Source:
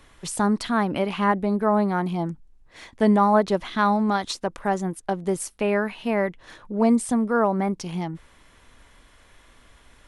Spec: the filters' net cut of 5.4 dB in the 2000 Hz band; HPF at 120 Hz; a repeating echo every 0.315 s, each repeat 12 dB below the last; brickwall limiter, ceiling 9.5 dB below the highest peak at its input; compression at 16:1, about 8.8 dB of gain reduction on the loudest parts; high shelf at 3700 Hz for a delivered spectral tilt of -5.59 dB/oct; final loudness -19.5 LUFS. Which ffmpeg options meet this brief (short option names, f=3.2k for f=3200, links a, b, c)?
-af "highpass=120,equalizer=f=2k:t=o:g=-6.5,highshelf=f=3.7k:g=-4.5,acompressor=threshold=-23dB:ratio=16,alimiter=limit=-23.5dB:level=0:latency=1,aecho=1:1:315|630|945:0.251|0.0628|0.0157,volume=13dB"